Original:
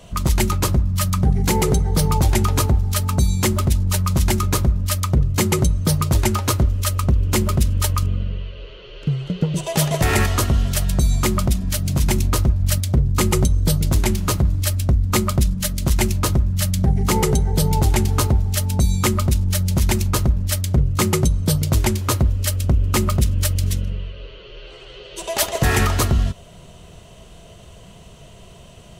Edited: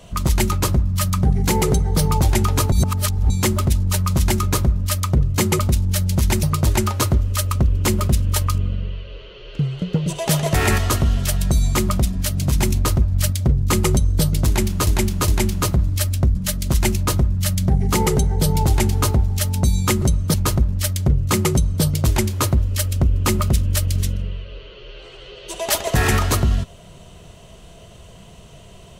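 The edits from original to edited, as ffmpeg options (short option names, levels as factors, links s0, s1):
-filter_complex "[0:a]asplit=10[s0][s1][s2][s3][s4][s5][s6][s7][s8][s9];[s0]atrim=end=2.722[s10];[s1]atrim=start=2.718:end=3.302,asetpts=PTS-STARTPTS,areverse[s11];[s2]atrim=start=3.298:end=5.592[s12];[s3]atrim=start=19.178:end=20.022[s13];[s4]atrim=start=5.908:end=14.352[s14];[s5]atrim=start=13.938:end=14.352[s15];[s6]atrim=start=13.938:end=15.012[s16];[s7]atrim=start=15.508:end=19.182[s17];[s8]atrim=start=5.588:end=5.912[s18];[s9]atrim=start=20.018[s19];[s10][s11]acrossfade=d=0.004:c1=hsin:c2=hsin[s20];[s20][s12]acrossfade=d=0.004:c1=hsin:c2=hsin[s21];[s21][s13]acrossfade=d=0.004:c1=hsin:c2=hsin[s22];[s22][s14]acrossfade=d=0.004:c1=hsin:c2=hsin[s23];[s23][s15]acrossfade=d=0.004:c1=hsin:c2=hsin[s24];[s24][s16]acrossfade=d=0.004:c1=hsin:c2=hsin[s25];[s25][s17]acrossfade=d=0.004:c1=hsin:c2=hsin[s26];[s26][s18]acrossfade=d=0.004:c1=hsin:c2=hsin[s27];[s27][s19]acrossfade=d=0.004:c1=hsin:c2=hsin"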